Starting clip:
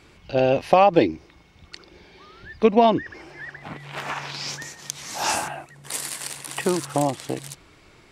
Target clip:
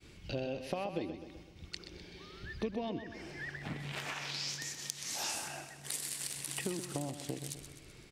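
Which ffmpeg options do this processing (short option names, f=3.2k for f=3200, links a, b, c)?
-filter_complex "[0:a]agate=range=-33dB:threshold=-50dB:ratio=3:detection=peak,equalizer=f=980:t=o:w=1.9:g=-10.5,acompressor=threshold=-36dB:ratio=5,asettb=1/sr,asplit=3[a][b][c];[a]atrim=end=3.924[d];[b]atrim=start=3.92:end=5.94,asetpts=PTS-STARTPTS,afade=t=in:d=0.004:c=qsin,afade=t=out:st=2.016:d=0.004:c=qsin,lowshelf=f=280:g=-8[e];[c]atrim=start=5.936[f];[d][e]acrossfade=d=0.004:c1=hsin:c2=qsin[g];[g][f]acrossfade=d=0.004:c1=qsin:c2=hsin,aecho=1:1:127|254|381|508|635|762:0.316|0.168|0.0888|0.0471|0.025|0.0132"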